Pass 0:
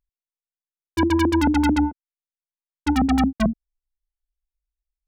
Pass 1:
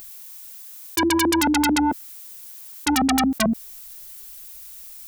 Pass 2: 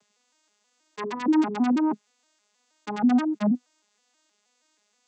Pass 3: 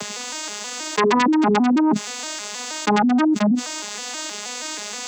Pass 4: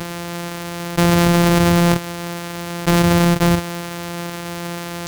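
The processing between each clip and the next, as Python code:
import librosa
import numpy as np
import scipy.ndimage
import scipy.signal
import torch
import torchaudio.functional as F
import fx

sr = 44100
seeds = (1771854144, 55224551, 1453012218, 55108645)

y1 = fx.riaa(x, sr, side='recording')
y1 = fx.env_flatten(y1, sr, amount_pct=100)
y2 = fx.vocoder_arp(y1, sr, chord='minor triad', root=56, every_ms=159)
y2 = fx.peak_eq(y2, sr, hz=740.0, db=3.0, octaves=1.5)
y2 = y2 * 10.0 ** (-3.0 / 20.0)
y3 = fx.env_flatten(y2, sr, amount_pct=100)
y4 = np.r_[np.sort(y3[:len(y3) // 256 * 256].reshape(-1, 256), axis=1).ravel(), y3[len(y3) // 256 * 256:]]
y4 = y4 * 10.0 ** (3.0 / 20.0)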